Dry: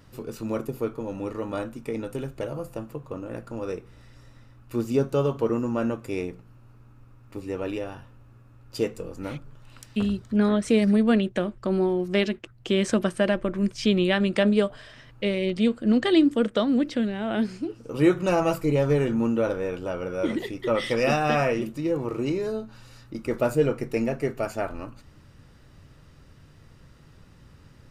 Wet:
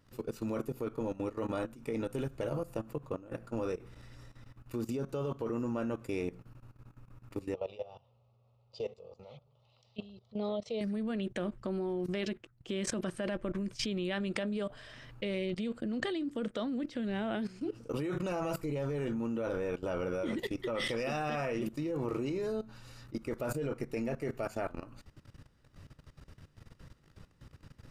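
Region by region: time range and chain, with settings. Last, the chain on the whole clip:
7.54–10.81 speaker cabinet 160–4400 Hz, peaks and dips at 170 Hz -9 dB, 320 Hz -9 dB, 1000 Hz -6 dB, 1500 Hz -10 dB, 2400 Hz -5 dB + fixed phaser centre 690 Hz, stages 4
whole clip: limiter -17.5 dBFS; level quantiser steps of 17 dB

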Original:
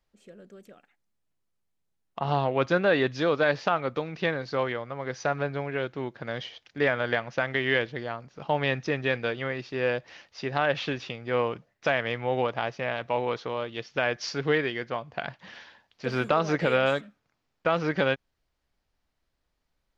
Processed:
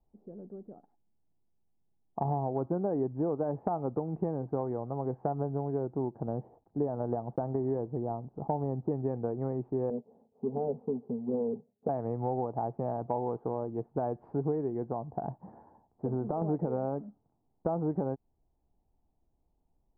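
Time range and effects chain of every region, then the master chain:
6.2–8.91 block floating point 5-bit + LPF 1300 Hz
9.9–11.89 half-waves squared off + double band-pass 320 Hz, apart 0.88 oct
14.85–16.42 compressor 3:1, threshold -27 dBFS + Butterworth band-stop 5000 Hz, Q 0.56
whole clip: Chebyshev low-pass 840 Hz, order 4; bell 550 Hz -8 dB 0.42 oct; compressor, threshold -33 dBFS; gain +5.5 dB

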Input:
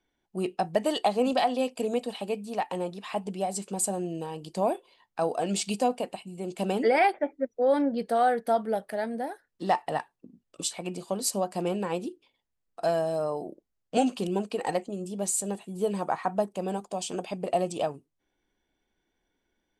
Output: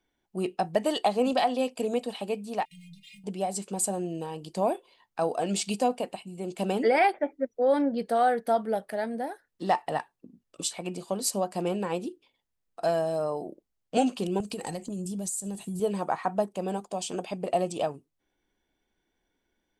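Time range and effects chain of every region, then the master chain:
2.65–3.24 G.711 law mismatch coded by mu + brick-wall FIR band-stop 230–1900 Hz + metallic resonator 160 Hz, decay 0.22 s, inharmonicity 0.008
14.4–15.8 tone controls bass +14 dB, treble +14 dB + compressor, threshold -31 dBFS
whole clip: dry

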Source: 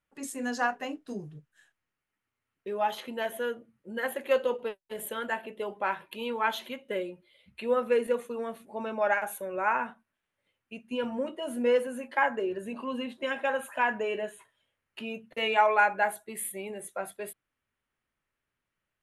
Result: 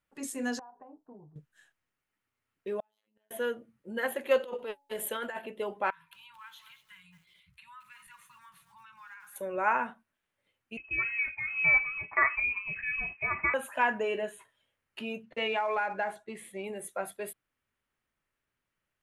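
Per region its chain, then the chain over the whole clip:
0.59–1.36 ladder low-pass 990 Hz, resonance 70% + compressor 16:1, threshold -46 dBFS
2.8–3.31 compressor 3:1, threshold -41 dBFS + robotiser 107 Hz + flipped gate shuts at -34 dBFS, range -34 dB
4.4–5.39 bell 140 Hz -5.5 dB 2.5 oct + negative-ratio compressor -36 dBFS + de-hum 282.2 Hz, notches 3
5.9–9.36 Chebyshev band-stop 170–960 Hz, order 5 + compressor 2.5:1, threshold -56 dBFS + lo-fi delay 0.225 s, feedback 35%, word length 10-bit, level -10.5 dB
10.77–13.54 inverted band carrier 2800 Hz + mismatched tape noise reduction encoder only
15.23–16.64 short-mantissa float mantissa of 4-bit + air absorption 100 m + compressor, threshold -26 dBFS
whole clip: dry

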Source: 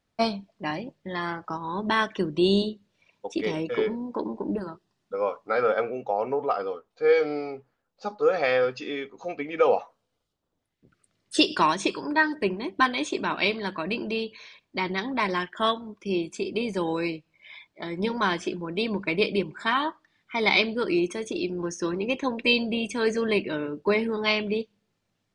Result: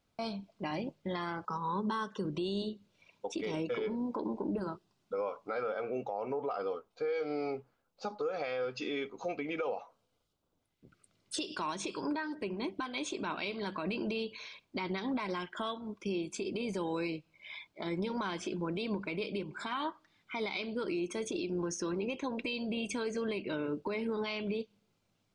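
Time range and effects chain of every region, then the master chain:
1.45–2.25 HPF 62 Hz + fixed phaser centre 460 Hz, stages 8
whole clip: compressor 12:1, threshold -29 dBFS; limiter -26.5 dBFS; notch 1800 Hz, Q 7.4

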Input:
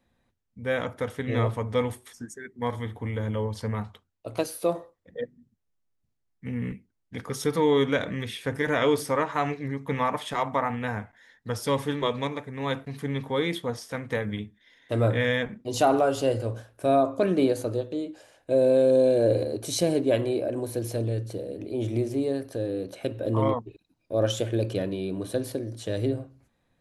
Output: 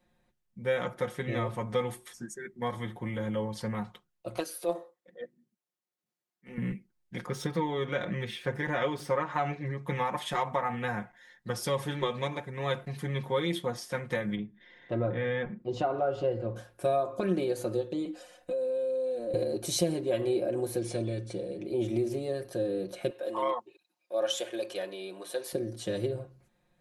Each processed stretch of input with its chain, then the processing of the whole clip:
4.38–6.58 HPF 290 Hz + transient shaper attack -10 dB, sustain -3 dB
7.26–9.85 median filter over 3 samples + high shelf 5500 Hz -9 dB
14.35–16.56 tape spacing loss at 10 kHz 31 dB + upward compressor, threshold -44 dBFS
18.05–19.34 compressor 16:1, threshold -33 dBFS + comb 4 ms, depth 90%
20.78–21.65 elliptic low-pass 9800 Hz + notch 3300 Hz, Q 25 + small resonant body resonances 2300/3400 Hz, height 10 dB, ringing for 20 ms
23.1–25.53 HPF 640 Hz + notch 1400 Hz, Q 24
whole clip: compressor 4:1, threshold -25 dBFS; comb 5.6 ms, depth 79%; gain -2.5 dB

